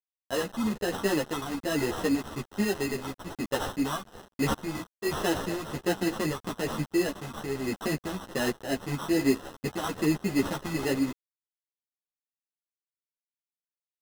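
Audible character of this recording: a quantiser's noise floor 6-bit, dither none; phasing stages 6, 1.2 Hz, lowest notch 480–4400 Hz; aliases and images of a low sample rate 2.3 kHz, jitter 0%; a shimmering, thickened sound

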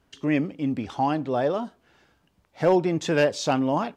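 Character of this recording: noise floor -68 dBFS; spectral tilt -5.0 dB/octave

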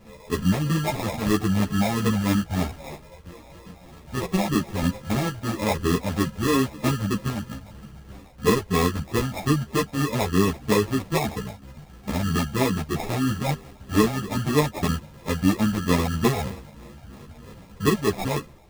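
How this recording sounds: phasing stages 6, 3.1 Hz, lowest notch 350–2000 Hz; aliases and images of a low sample rate 1.5 kHz, jitter 0%; a shimmering, thickened sound

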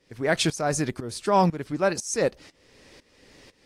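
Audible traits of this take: tremolo saw up 2 Hz, depth 90%; AAC

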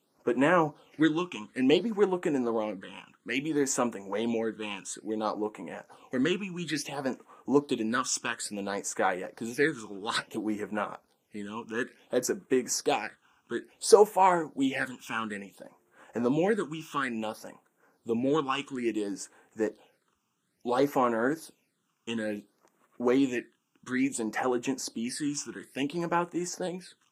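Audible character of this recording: phasing stages 8, 0.58 Hz, lowest notch 560–4700 Hz; Vorbis

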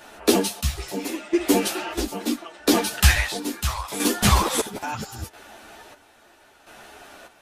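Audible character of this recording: chopped level 0.75 Hz, depth 65%, duty 45%; a shimmering, thickened sound

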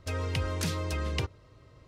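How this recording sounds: noise floor -57 dBFS; spectral tilt -5.0 dB/octave

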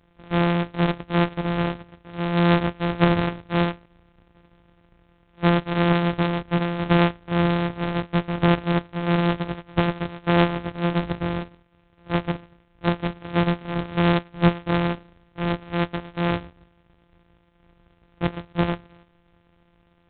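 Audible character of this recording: a buzz of ramps at a fixed pitch in blocks of 256 samples; G.726

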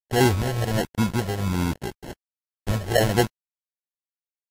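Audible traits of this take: a quantiser's noise floor 6-bit, dither none; phasing stages 12, 1.3 Hz, lowest notch 240–1900 Hz; aliases and images of a low sample rate 1.2 kHz, jitter 0%; Vorbis

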